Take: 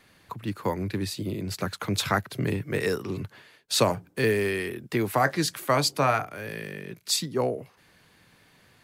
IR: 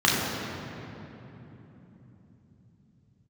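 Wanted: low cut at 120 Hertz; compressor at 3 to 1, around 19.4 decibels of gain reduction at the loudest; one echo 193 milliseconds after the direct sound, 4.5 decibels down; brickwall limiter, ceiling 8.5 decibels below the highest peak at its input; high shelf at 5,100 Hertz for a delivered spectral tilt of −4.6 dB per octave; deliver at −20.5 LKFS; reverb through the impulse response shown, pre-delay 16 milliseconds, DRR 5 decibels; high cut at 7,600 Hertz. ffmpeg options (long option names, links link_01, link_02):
-filter_complex "[0:a]highpass=120,lowpass=7600,highshelf=frequency=5100:gain=-5,acompressor=threshold=-45dB:ratio=3,alimiter=level_in=9.5dB:limit=-24dB:level=0:latency=1,volume=-9.5dB,aecho=1:1:193:0.596,asplit=2[link_01][link_02];[1:a]atrim=start_sample=2205,adelay=16[link_03];[link_02][link_03]afir=irnorm=-1:irlink=0,volume=-24dB[link_04];[link_01][link_04]amix=inputs=2:normalize=0,volume=22dB"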